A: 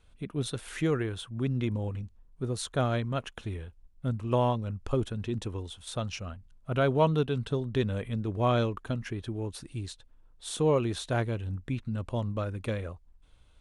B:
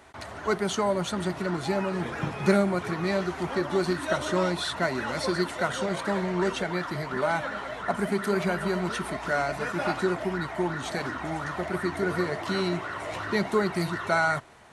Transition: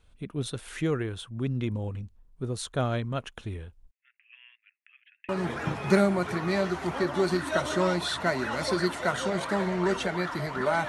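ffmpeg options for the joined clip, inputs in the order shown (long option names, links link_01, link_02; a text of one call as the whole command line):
ffmpeg -i cue0.wav -i cue1.wav -filter_complex "[0:a]asettb=1/sr,asplit=3[link_01][link_02][link_03];[link_01]atrim=end=3.914[link_04];[link_02]atrim=start=3.91:end=5.29,asetpts=PTS-STARTPTS,afade=type=in:duration=0.004:curve=qsin,afade=type=out:start_time=1.376:duration=0.004:curve=qsin,asuperpass=centerf=2200:order=8:qfactor=2.1[link_05];[link_03]atrim=start=5.286[link_06];[link_04][link_05]acrossfade=duration=0.004:curve1=hsin:curve2=qsin[link_07];[link_07][link_06]acrossfade=duration=0.004:curve1=qsin:curve2=hsin,apad=whole_dur=10.88,atrim=end=10.88,atrim=end=5.292[link_08];[1:a]atrim=start=1.848:end=7.44[link_09];[link_08][link_09]acrossfade=duration=0.004:curve1=hsin:curve2=hsin" out.wav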